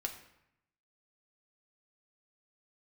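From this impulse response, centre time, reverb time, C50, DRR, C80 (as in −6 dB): 16 ms, 0.80 s, 9.5 dB, 2.0 dB, 12.0 dB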